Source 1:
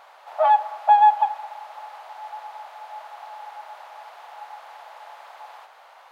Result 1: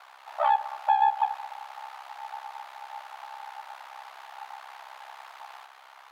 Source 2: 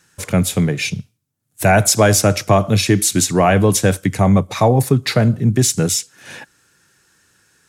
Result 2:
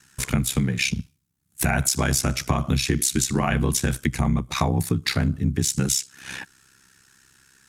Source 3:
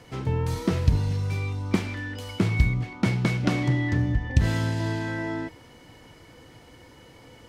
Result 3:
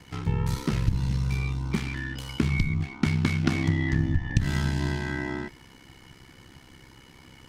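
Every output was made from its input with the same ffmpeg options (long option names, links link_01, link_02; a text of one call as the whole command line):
ffmpeg -i in.wav -af "equalizer=frequency=550:width=1.7:gain=-12.5,acompressor=threshold=-20dB:ratio=6,aeval=exprs='val(0)*sin(2*PI*33*n/s)':channel_layout=same,volume=4dB" out.wav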